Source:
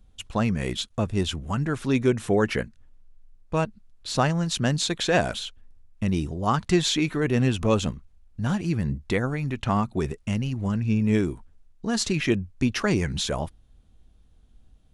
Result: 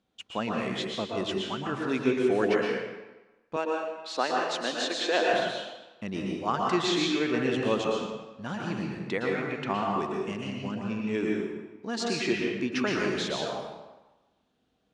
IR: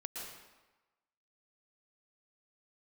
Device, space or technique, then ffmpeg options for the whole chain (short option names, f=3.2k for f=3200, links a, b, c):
supermarket ceiling speaker: -filter_complex "[0:a]highpass=260,lowpass=5.2k[a];[1:a]atrim=start_sample=2205[b];[a][b]afir=irnorm=-1:irlink=0,asettb=1/sr,asplit=3[c][d][e];[c]atrim=end=3.564[f];[d]atrim=start=3.56:end=5.33,asetpts=PTS-STARTPTS,afade=t=in:d=0.004:c=qsin,afade=t=out:st=1.766:d=0.004:c=qsin,highpass=f=270:w=0.5412,highpass=f=270:w=1.3066[g];[e]atrim=start=5.326[h];[f][g]acrossfade=d=0.004:c1=hsin:c2=qsin[i];[i][h]acrossfade=d=0.004:c1=qsin:c2=hsin"